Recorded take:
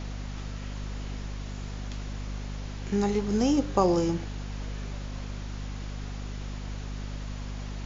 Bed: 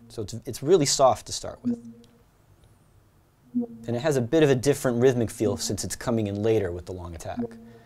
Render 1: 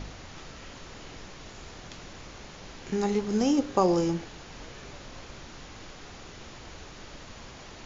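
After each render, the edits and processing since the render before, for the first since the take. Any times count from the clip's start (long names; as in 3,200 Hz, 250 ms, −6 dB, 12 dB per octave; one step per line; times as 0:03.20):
hum removal 50 Hz, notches 5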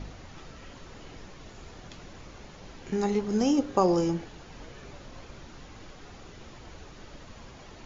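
broadband denoise 6 dB, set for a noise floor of −46 dBFS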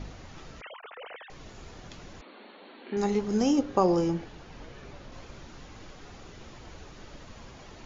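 0:00.61–0:01.30: three sine waves on the formant tracks
0:02.21–0:02.97: linear-phase brick-wall band-pass 200–4,500 Hz
0:03.61–0:05.12: high-frequency loss of the air 65 metres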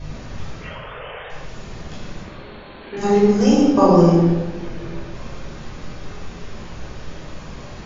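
rectangular room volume 1,000 cubic metres, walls mixed, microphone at 5.3 metres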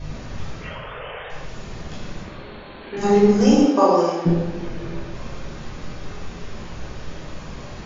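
0:03.65–0:04.25: high-pass filter 250 Hz → 760 Hz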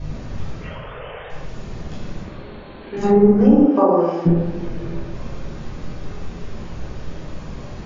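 treble cut that deepens with the level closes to 1,300 Hz, closed at −10.5 dBFS
tilt shelving filter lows +3.5 dB, about 710 Hz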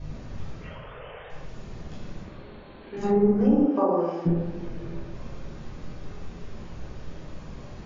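level −8 dB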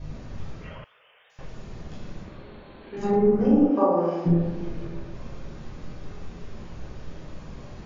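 0:00.84–0:01.39: first difference
0:03.09–0:04.87: double-tracking delay 41 ms −3 dB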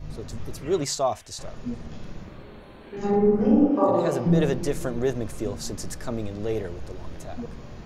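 mix in bed −5.5 dB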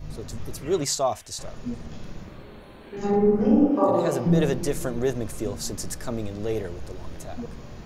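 high-shelf EQ 7,600 Hz +7.5 dB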